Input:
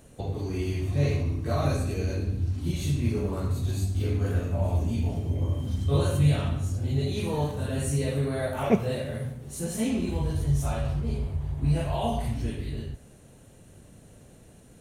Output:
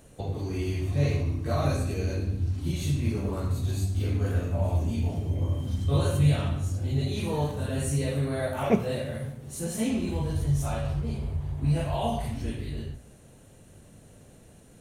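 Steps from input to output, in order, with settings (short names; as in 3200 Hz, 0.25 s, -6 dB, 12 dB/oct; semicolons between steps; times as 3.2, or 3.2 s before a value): notches 60/120/180/240/300/360/420 Hz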